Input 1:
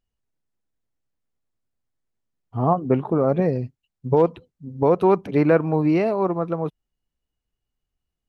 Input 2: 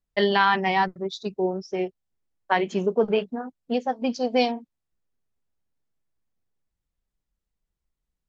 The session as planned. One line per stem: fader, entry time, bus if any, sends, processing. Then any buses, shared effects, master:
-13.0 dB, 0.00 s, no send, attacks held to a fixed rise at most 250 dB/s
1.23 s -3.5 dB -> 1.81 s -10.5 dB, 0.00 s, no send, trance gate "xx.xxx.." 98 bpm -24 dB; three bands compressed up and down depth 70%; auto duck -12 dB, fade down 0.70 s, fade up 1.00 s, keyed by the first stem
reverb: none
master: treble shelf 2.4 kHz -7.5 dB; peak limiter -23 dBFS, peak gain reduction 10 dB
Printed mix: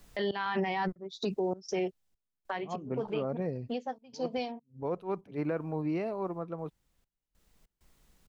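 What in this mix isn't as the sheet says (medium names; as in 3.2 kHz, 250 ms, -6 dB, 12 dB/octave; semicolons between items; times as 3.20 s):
stem 2 -3.5 dB -> +7.5 dB; master: missing treble shelf 2.4 kHz -7.5 dB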